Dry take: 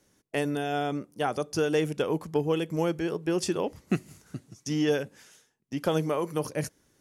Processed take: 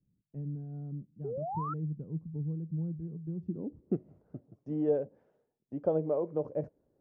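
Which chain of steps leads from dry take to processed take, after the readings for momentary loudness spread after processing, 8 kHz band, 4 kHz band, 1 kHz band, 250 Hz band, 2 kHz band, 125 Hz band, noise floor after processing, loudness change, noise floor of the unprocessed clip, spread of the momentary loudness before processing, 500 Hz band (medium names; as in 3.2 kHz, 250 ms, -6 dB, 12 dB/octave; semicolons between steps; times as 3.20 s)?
14 LU, under -40 dB, under -40 dB, -8.5 dB, -7.0 dB, under -25 dB, -2.0 dB, -80 dBFS, -6.5 dB, -69 dBFS, 10 LU, -6.0 dB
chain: low-pass sweep 160 Hz -> 590 Hz, 3.40–4.07 s; painted sound rise, 1.24–1.74 s, 390–1400 Hz -29 dBFS; trim -7.5 dB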